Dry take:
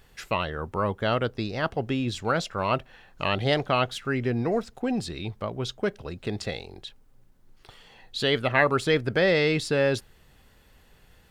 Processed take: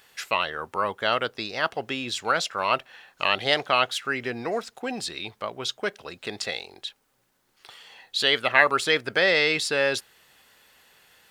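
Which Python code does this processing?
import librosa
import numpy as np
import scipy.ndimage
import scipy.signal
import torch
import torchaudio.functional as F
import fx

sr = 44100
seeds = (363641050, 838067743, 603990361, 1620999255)

y = fx.highpass(x, sr, hz=1200.0, slope=6)
y = F.gain(torch.from_numpy(y), 6.5).numpy()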